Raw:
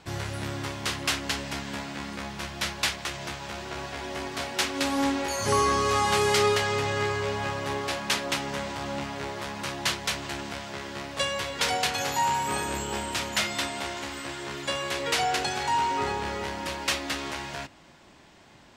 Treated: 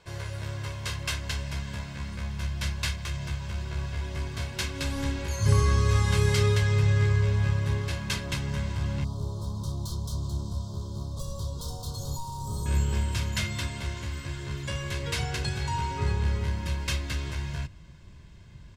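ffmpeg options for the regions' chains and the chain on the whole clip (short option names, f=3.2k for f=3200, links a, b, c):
-filter_complex "[0:a]asettb=1/sr,asplit=3[a][b][c];[a]atrim=end=9.044[d];[b]atrim=start=9.04:end=12.66,asetpts=PTS-STARTPTS,afade=t=in:d=0.004:c=qsin,afade=t=out:st=3.616:d=0.004:c=qsin,asoftclip=type=hard:threshold=-30.5dB,asuperstop=centerf=2100:order=8:qfactor=0.85[e];[c]atrim=start=12.656[f];[d][e]acrossfade=d=0.004:c1=hsin:c2=qsin[g];[g][f]acrossfade=d=0.004:c1=qsin:c2=hsin,bandreject=f=1.1k:w=30,aecho=1:1:1.9:0.61,asubboost=boost=12:cutoff=160,volume=-6.5dB"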